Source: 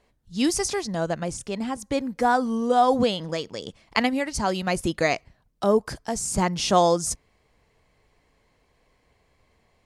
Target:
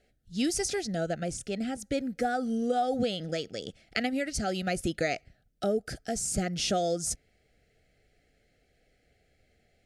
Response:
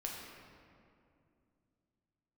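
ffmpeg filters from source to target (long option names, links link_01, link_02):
-af "acompressor=threshold=-22dB:ratio=3,asuperstop=centerf=1000:order=12:qfactor=2.1,volume=-3dB"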